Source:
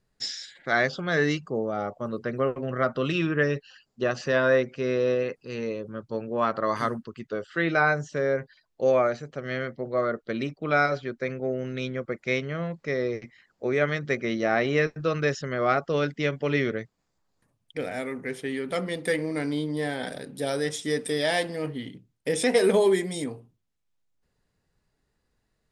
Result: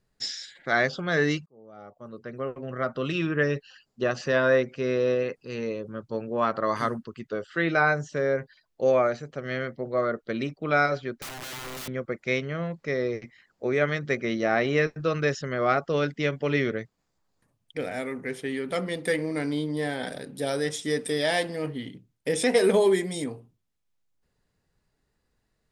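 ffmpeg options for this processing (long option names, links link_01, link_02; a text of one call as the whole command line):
ffmpeg -i in.wav -filter_complex "[0:a]asettb=1/sr,asplit=3[link_01][link_02][link_03];[link_01]atrim=end=11.194[link_04];[link_02]atrim=start=11.19:end=11.88,asetpts=PTS-STARTPTS,afade=type=in:duration=0.004:curve=qsin,afade=type=out:start_time=0.686:duration=0.004:curve=qsin,aeval=exprs='(mod(42.2*val(0)+1,2)-1)/42.2':channel_layout=same[link_05];[link_03]atrim=start=11.876[link_06];[link_04][link_05]acrossfade=duration=0.004:curve1=hsin:curve2=qsin[link_07];[link_07][link_06]acrossfade=duration=0.004:curve1=qsin:curve2=hsin,asplit=2[link_08][link_09];[link_08]atrim=end=1.46,asetpts=PTS-STARTPTS,afade=type=out:start_time=1.456:duration=0.004:curve=hsin[link_10];[link_09]atrim=start=1.46,asetpts=PTS-STARTPTS,afade=type=in:duration=2.09[link_11];[link_10][link_11]concat=n=2:v=0:a=1" out.wav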